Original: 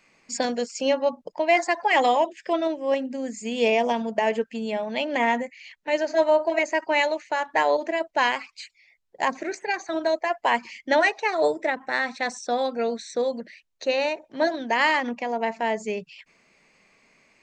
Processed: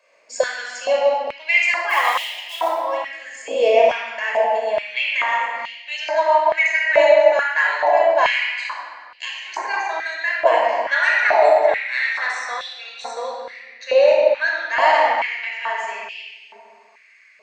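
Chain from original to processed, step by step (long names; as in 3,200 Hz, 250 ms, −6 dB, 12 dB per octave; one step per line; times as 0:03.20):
0:01.89–0:02.69: floating-point word with a short mantissa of 2 bits
rectangular room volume 3,700 cubic metres, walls mixed, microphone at 5.4 metres
high-pass on a step sequencer 2.3 Hz 580–2,900 Hz
level −5 dB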